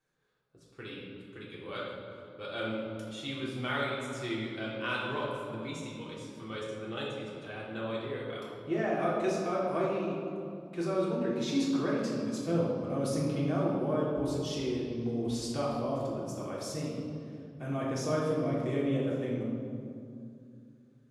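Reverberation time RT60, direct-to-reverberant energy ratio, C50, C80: 2.3 s, -6.0 dB, 0.0 dB, 2.0 dB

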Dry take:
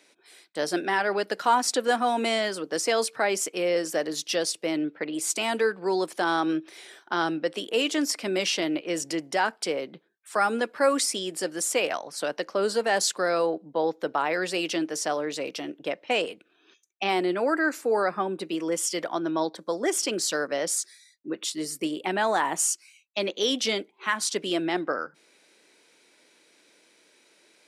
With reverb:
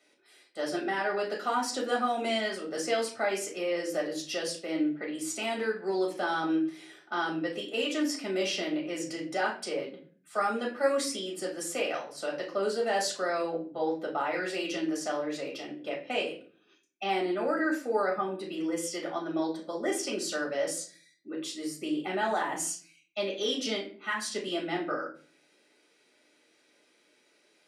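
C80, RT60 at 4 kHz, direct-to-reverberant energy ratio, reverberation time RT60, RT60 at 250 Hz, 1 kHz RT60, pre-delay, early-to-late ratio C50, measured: 14.0 dB, 0.30 s, -2.0 dB, 0.45 s, 0.65 s, 0.40 s, 4 ms, 8.5 dB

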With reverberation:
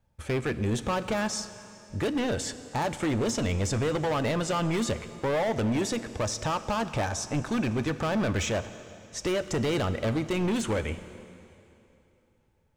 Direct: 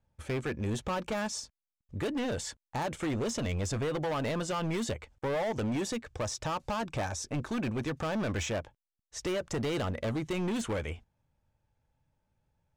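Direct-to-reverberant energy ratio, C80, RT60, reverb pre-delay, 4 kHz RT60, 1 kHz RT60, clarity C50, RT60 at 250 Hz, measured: 12.0 dB, 13.5 dB, 2.9 s, 5 ms, 2.7 s, 2.9 s, 13.0 dB, 2.9 s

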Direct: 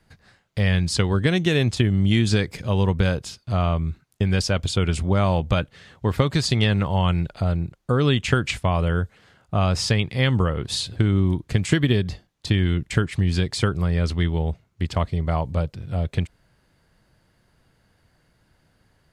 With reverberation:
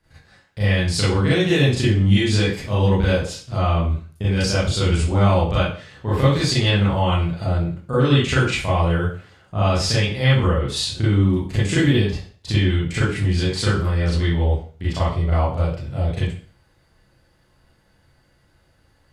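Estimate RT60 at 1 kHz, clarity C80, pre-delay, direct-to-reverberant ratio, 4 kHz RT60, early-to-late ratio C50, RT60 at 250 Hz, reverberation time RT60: 0.40 s, 7.5 dB, 32 ms, -10.0 dB, 0.40 s, 0.5 dB, 0.40 s, 0.40 s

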